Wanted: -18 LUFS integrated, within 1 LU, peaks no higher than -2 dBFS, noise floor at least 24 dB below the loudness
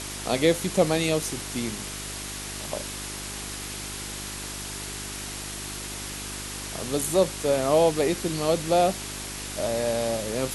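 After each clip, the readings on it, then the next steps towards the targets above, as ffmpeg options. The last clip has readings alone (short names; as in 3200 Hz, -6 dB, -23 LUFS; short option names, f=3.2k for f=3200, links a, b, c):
hum 50 Hz; harmonics up to 400 Hz; hum level -38 dBFS; noise floor -36 dBFS; noise floor target -51 dBFS; loudness -27.0 LUFS; peak -7.5 dBFS; loudness target -18.0 LUFS
-> -af "bandreject=f=50:t=h:w=4,bandreject=f=100:t=h:w=4,bandreject=f=150:t=h:w=4,bandreject=f=200:t=h:w=4,bandreject=f=250:t=h:w=4,bandreject=f=300:t=h:w=4,bandreject=f=350:t=h:w=4,bandreject=f=400:t=h:w=4"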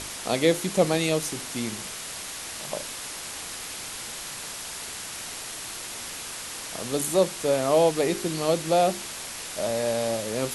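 hum none; noise floor -37 dBFS; noise floor target -52 dBFS
-> -af "afftdn=nr=15:nf=-37"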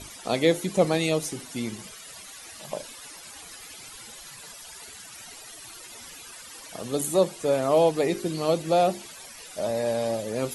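noise floor -44 dBFS; noise floor target -50 dBFS
-> -af "afftdn=nr=6:nf=-44"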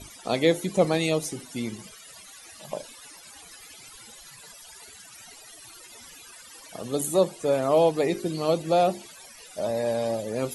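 noise floor -48 dBFS; noise floor target -50 dBFS
-> -af "afftdn=nr=6:nf=-48"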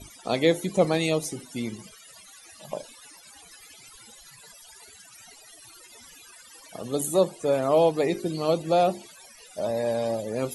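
noise floor -51 dBFS; loudness -25.5 LUFS; peak -8.0 dBFS; loudness target -18.0 LUFS
-> -af "volume=7.5dB,alimiter=limit=-2dB:level=0:latency=1"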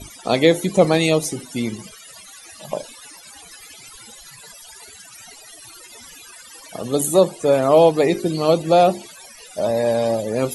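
loudness -18.5 LUFS; peak -2.0 dBFS; noise floor -43 dBFS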